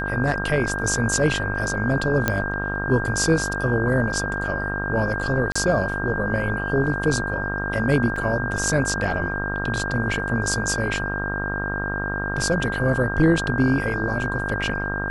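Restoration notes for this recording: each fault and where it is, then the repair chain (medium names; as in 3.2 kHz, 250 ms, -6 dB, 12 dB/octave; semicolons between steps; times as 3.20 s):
buzz 50 Hz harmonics 33 -29 dBFS
whine 1.6 kHz -27 dBFS
2.28 s: pop -5 dBFS
5.52–5.55 s: dropout 35 ms
8.16 s: dropout 4 ms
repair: de-click; de-hum 50 Hz, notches 33; band-stop 1.6 kHz, Q 30; interpolate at 5.52 s, 35 ms; interpolate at 8.16 s, 4 ms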